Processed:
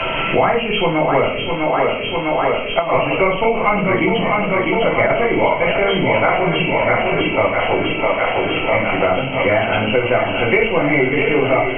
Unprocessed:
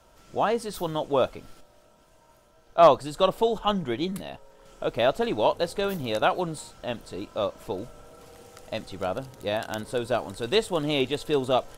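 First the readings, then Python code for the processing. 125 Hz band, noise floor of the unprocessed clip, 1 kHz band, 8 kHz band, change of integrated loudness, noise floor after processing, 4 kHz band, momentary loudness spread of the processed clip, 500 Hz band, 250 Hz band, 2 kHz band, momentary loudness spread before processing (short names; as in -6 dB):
+12.5 dB, -58 dBFS, +10.0 dB, under -30 dB, +10.5 dB, -22 dBFS, +9.5 dB, 3 LU, +9.5 dB, +11.5 dB, +19.5 dB, 12 LU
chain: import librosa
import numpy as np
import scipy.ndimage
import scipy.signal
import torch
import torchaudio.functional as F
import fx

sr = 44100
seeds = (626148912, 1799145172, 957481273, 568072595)

y = fx.freq_compress(x, sr, knee_hz=1900.0, ratio=4.0)
y = fx.high_shelf(y, sr, hz=2200.0, db=10.5)
y = fx.room_shoebox(y, sr, seeds[0], volume_m3=55.0, walls='mixed', distance_m=0.73)
y = fx.over_compress(y, sr, threshold_db=-15.0, ratio=-0.5)
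y = fx.echo_thinned(y, sr, ms=652, feedback_pct=71, hz=170.0, wet_db=-6.5)
y = fx.band_squash(y, sr, depth_pct=100)
y = F.gain(torch.from_numpy(y), 3.0).numpy()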